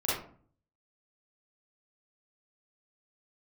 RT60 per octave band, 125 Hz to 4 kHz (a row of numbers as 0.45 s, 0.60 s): 0.80 s, 0.65 s, 0.50 s, 0.45 s, 0.35 s, 0.25 s